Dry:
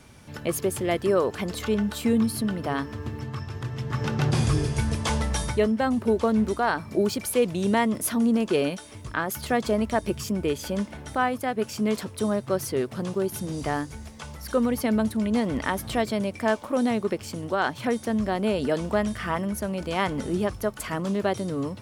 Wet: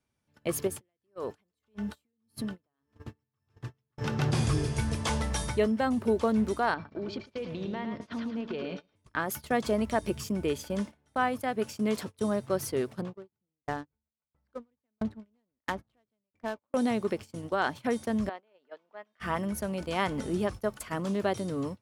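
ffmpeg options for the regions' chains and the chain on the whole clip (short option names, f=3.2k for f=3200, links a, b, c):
-filter_complex "[0:a]asettb=1/sr,asplit=3[a][b][c];[a]atrim=end=0.674[d];[b]atrim=start=0.67:end=3.98,asetpts=PTS-STARTPTS,afade=t=in:d=0.004:c=qsin,afade=t=out:st=3.306:d=0.004:c=qsin,acompressor=threshold=-25dB:ratio=8:attack=3.2:release=140:knee=1:detection=peak,aeval=exprs='val(0)*pow(10,-23*(0.5-0.5*cos(2*PI*1.7*n/s))/20)':c=same[e];[c]atrim=start=3.976[f];[d][e]acrossfade=d=0.004:c1=hsin:c2=qsin[g];[g][f]acrossfade=d=0.004:c1=qsin:c2=hsin,asettb=1/sr,asplit=3[h][i][j];[h]atrim=end=6.744[k];[i]atrim=start=6.74:end=8.96,asetpts=PTS-STARTPTS,afade=t=in:d=0.004:c=qsin,afade=t=out:st=2.216:d=0.004:c=qsin,lowpass=f=4.4k:w=0.5412,lowpass=f=4.4k:w=1.3066,acompressor=threshold=-28dB:ratio=8:attack=3.2:release=140:knee=1:detection=peak,aecho=1:1:109|218|327|436|545:0.473|0.199|0.0835|0.0351|0.0147,atrim=end_sample=97902[l];[j]atrim=start=8.956[m];[k][l]acrossfade=d=0.004:c1=hsin:c2=qsin[n];[n][m]acrossfade=d=0.004:c1=qsin:c2=hsin,asettb=1/sr,asplit=3[o][p][q];[o]atrim=end=13.014[r];[p]atrim=start=13.01:end=16.74,asetpts=PTS-STARTPTS,afade=t=in:d=0.004:c=qsin,afade=t=out:st=3.726:d=0.004:c=qsin,adynamicsmooth=sensitivity=6.5:basefreq=1k,aeval=exprs='val(0)*pow(10,-36*if(lt(mod(1.5*n/s,1),2*abs(1.5)/1000),1-mod(1.5*n/s,1)/(2*abs(1.5)/1000),(mod(1.5*n/s,1)-2*abs(1.5)/1000)/(1-2*abs(1.5)/1000))/20)':c=same[s];[q]atrim=start=16.736[t];[r][s]acrossfade=d=0.004:c1=hsin:c2=qsin[u];[u][t]acrossfade=d=0.004:c1=qsin:c2=hsin,asettb=1/sr,asplit=3[v][w][x];[v]atrim=end=18.294[y];[w]atrim=start=18.29:end=19.2,asetpts=PTS-STARTPTS,afade=t=in:d=0.004:c=qsin,afade=t=out:st=0.906:d=0.004:c=qsin,acompressor=threshold=-28dB:ratio=6:attack=3.2:release=140:knee=1:detection=peak,highpass=540,lowpass=3.1k[z];[x]atrim=start=19.196[aa];[y][z]acrossfade=d=0.004:c1=hsin:c2=qsin[ab];[ab][aa]acrossfade=d=0.004:c1=qsin:c2=hsin,lowshelf=f=94:g=-2.5,agate=range=-27dB:threshold=-33dB:ratio=16:detection=peak,volume=-3.5dB"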